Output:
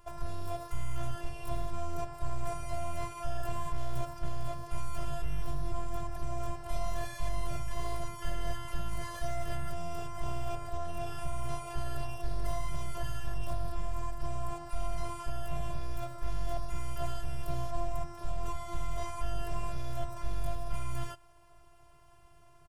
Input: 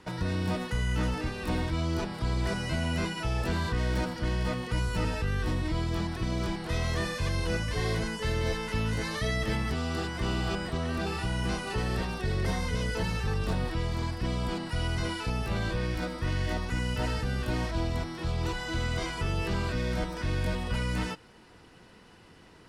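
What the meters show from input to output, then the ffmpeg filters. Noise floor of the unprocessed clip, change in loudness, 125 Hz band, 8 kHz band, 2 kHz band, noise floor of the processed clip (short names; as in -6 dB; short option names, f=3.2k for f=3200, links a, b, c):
-54 dBFS, -8.5 dB, -9.0 dB, -5.0 dB, -14.0 dB, -57 dBFS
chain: -af "aeval=exprs='clip(val(0),-1,0.0531)':c=same,afftfilt=real='hypot(re,im)*cos(PI*b)':imag='0':win_size=512:overlap=0.75,firequalizer=gain_entry='entry(100,0);entry(150,12);entry(210,-27);entry(550,-4);entry(1200,-8);entry(1900,-17);entry(2800,-12);entry(4100,-17);entry(7300,-8);entry(14000,-1)':delay=0.05:min_phase=1,volume=7dB"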